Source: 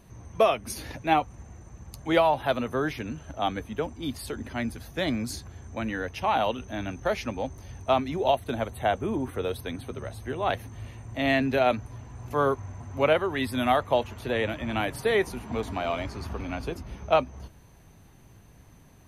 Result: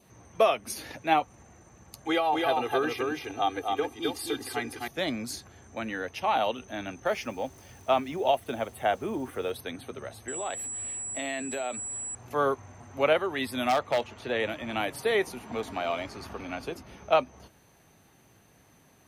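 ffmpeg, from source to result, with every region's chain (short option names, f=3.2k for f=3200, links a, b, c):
-filter_complex "[0:a]asettb=1/sr,asplit=3[a][b][c];[a]atrim=end=2.064[d];[b]atrim=start=2.06:end=4.88,asetpts=PTS-STARTPTS,afade=t=in:d=0.004:c=qsin,afade=t=out:st=2.816:d=0.004:c=qsin,aecho=1:1:2.5:0.98,atrim=end_sample=124362,acrossover=split=100|800[e][f][g];[e]acompressor=threshold=-52dB:ratio=4[h];[f]acompressor=threshold=-24dB:ratio=4[i];[g]acompressor=threshold=-29dB:ratio=4[j];[h][i][j]amix=inputs=3:normalize=0,aecho=1:1:261:0.708,atrim=end_sample=124362[k];[c]atrim=start=4.876[l];[d][k]acrossfade=d=0.004:c1=hsin:c2=qsin[m];[m][l]acrossfade=d=0.004:c1=qsin:c2=hsin,asettb=1/sr,asplit=3[n][o][p];[n]atrim=end=7.064[q];[o]atrim=start=7.06:end=9.52,asetpts=PTS-STARTPTS,afade=t=in:d=0.004:c=qsin,afade=t=out:st=2.456:d=0.004:c=qsin,bandreject=f=4k:w=5.6,acrusher=bits=8:mix=0:aa=0.5[r];[p]atrim=start=9.516[s];[q][r]acrossfade=d=0.004:c1=hsin:c2=qsin[t];[t][s]acrossfade=d=0.004:c1=qsin:c2=hsin,asettb=1/sr,asplit=3[u][v][w];[u]atrim=end=10.284[x];[v]atrim=start=10.28:end=12.15,asetpts=PTS-STARTPTS,afade=t=in:d=0.004:c=qsin,afade=t=out:st=1.866:d=0.004:c=qsin,equalizer=f=120:t=o:w=1.2:g=-6.5,aeval=exprs='val(0)+0.0224*sin(2*PI*7800*n/s)':c=same,acompressor=threshold=-28dB:ratio=5:attack=3.2:release=140:knee=1:detection=peak[y];[w]atrim=start=12.146[z];[x][y]acrossfade=d=0.004:c1=hsin:c2=qsin[aa];[aa][z]acrossfade=d=0.004:c1=qsin:c2=hsin,asettb=1/sr,asplit=3[ab][ac][ad];[ab]atrim=end=13.694[ae];[ac]atrim=start=13.69:end=14.4,asetpts=PTS-STARTPTS,afade=t=in:d=0.004:c=qsin,afade=t=out:st=0.706:d=0.004:c=qsin,lowpass=7.1k,aeval=exprs='0.15*(abs(mod(val(0)/0.15+3,4)-2)-1)':c=same[af];[ad]atrim=start=14.396[ag];[ae][af]acrossfade=d=0.004:c1=hsin:c2=qsin[ah];[ah][ag]acrossfade=d=0.004:c1=qsin:c2=hsin,adynamicequalizer=threshold=0.00501:dfrequency=1600:dqfactor=3:tfrequency=1600:tqfactor=3:attack=5:release=100:ratio=0.375:range=2:mode=cutabove:tftype=bell,highpass=f=330:p=1,bandreject=f=1k:w=16"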